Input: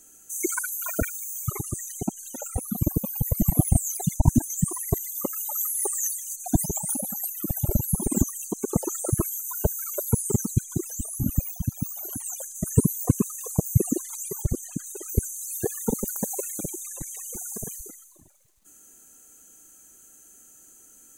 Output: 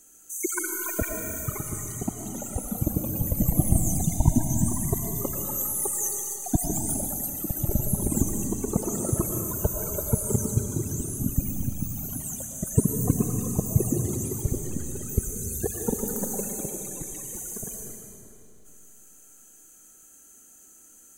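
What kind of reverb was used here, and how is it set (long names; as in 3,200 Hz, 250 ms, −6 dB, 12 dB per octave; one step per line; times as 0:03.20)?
comb and all-pass reverb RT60 2.7 s, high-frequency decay 0.9×, pre-delay 70 ms, DRR 2 dB
level −2 dB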